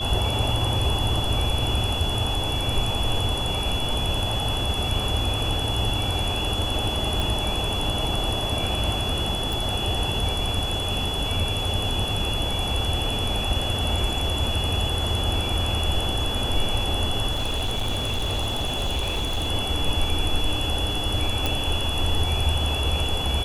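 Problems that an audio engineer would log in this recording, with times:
whine 3.4 kHz -28 dBFS
7.20 s: pop
9.53 s: pop
17.31–19.49 s: clipped -21 dBFS
21.46 s: pop

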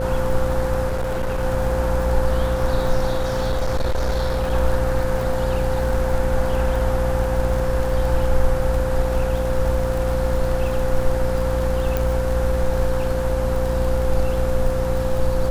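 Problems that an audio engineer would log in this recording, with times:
buzz 60 Hz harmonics 12 -24 dBFS
crackle 53 per s -26 dBFS
whine 520 Hz -23 dBFS
0.86–1.44 s: clipped -19 dBFS
3.17–4.53 s: clipped -16.5 dBFS
11.97 s: pop

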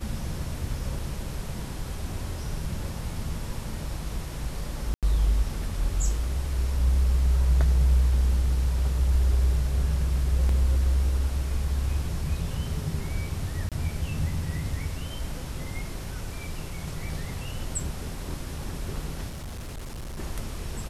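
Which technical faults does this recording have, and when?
4.94–5.03 s: dropout 87 ms
10.49 s: dropout 2.6 ms
13.69–13.72 s: dropout 27 ms
19.29–20.19 s: clipped -33 dBFS

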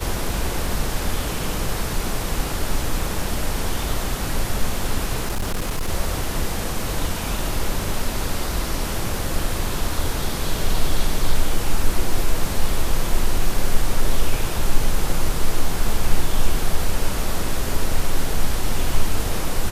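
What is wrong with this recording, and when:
5.25–5.89 s: clipped -19 dBFS

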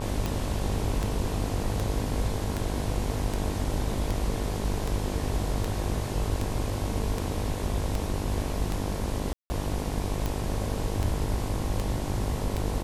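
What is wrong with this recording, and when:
buzz 50 Hz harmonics 22 -33 dBFS
tick 78 rpm
9.33–9.50 s: dropout 170 ms

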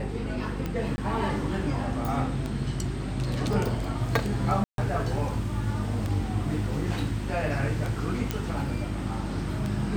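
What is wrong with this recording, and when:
hum 50 Hz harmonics 7 -33 dBFS
tick 33 1/3 rpm -18 dBFS
0.96–0.98 s: dropout 20 ms
3.53 s: dropout 2.9 ms
4.64–4.78 s: dropout 142 ms
8.31 s: pop -13 dBFS

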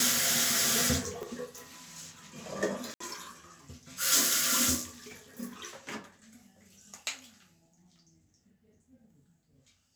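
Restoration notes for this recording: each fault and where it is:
1.23 s: pop
2.94–3.00 s: dropout 64 ms

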